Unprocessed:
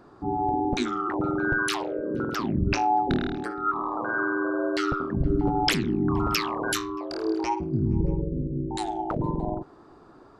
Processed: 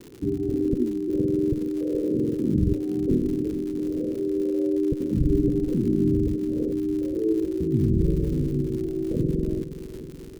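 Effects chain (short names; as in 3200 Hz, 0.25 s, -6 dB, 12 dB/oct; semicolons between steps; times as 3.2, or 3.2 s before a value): steep low-pass 510 Hz 72 dB/oct; in parallel at +2 dB: compressor, threshold -32 dBFS, peak gain reduction 13 dB; on the sum: crackle 160/s -35 dBFS; feedback echo 0.422 s, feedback 59%, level -13 dB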